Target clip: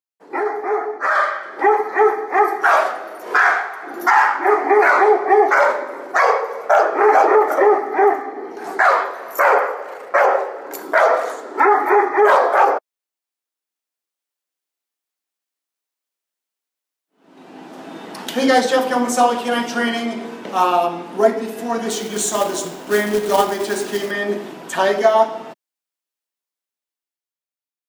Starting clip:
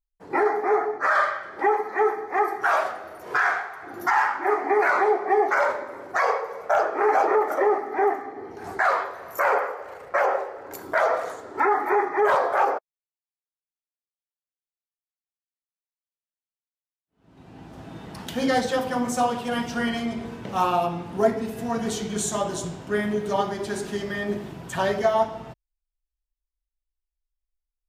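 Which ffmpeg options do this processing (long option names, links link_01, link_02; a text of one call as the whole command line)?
ffmpeg -i in.wav -filter_complex "[0:a]highpass=frequency=240:width=0.5412,highpass=frequency=240:width=1.3066,dynaudnorm=framelen=120:gausssize=21:maxgain=10.5dB,asettb=1/sr,asplit=3[link_01][link_02][link_03];[link_01]atrim=end=21.904[link_04];[link_02]atrim=start=21.9:end=24.11,asetpts=PTS-STARTPTS,afade=type=in:duration=0.004:curve=qsin,afade=type=out:start_time=2.206:duration=0.004:curve=qsin,acrusher=bits=3:mode=log:mix=0:aa=0.000001[link_05];[link_03]atrim=start=24.106[link_06];[link_04][link_05]acrossfade=duration=0.004:curve1=hsin:curve2=qsin[link_07];[link_07][link_06]acrossfade=duration=0.004:curve1=qsin:curve2=hsin" out.wav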